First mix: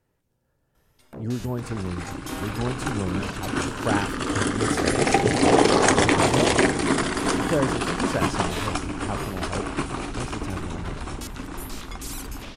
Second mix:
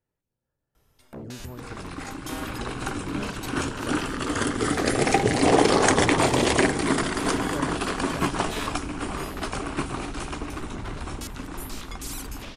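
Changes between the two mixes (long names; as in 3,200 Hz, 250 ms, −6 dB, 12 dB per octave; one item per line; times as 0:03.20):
speech −11.0 dB
reverb: off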